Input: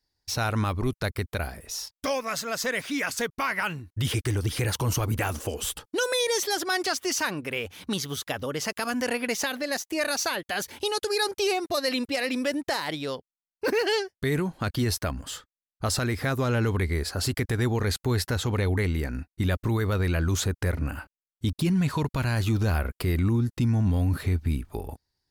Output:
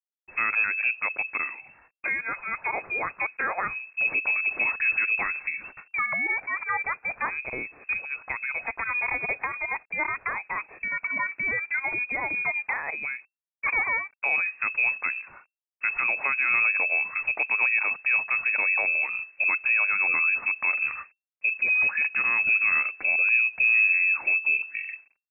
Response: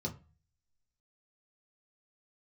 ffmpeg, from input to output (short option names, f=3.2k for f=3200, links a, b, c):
-filter_complex "[0:a]asplit=2[a][b];[1:a]atrim=start_sample=2205,afade=t=out:st=0.4:d=0.01,atrim=end_sample=18081,lowpass=1.9k[c];[b][c]afir=irnorm=-1:irlink=0,volume=-21.5dB[d];[a][d]amix=inputs=2:normalize=0,acrusher=bits=9:mix=0:aa=0.000001,lowpass=f=2.3k:t=q:w=0.5098,lowpass=f=2.3k:t=q:w=0.6013,lowpass=f=2.3k:t=q:w=0.9,lowpass=f=2.3k:t=q:w=2.563,afreqshift=-2700"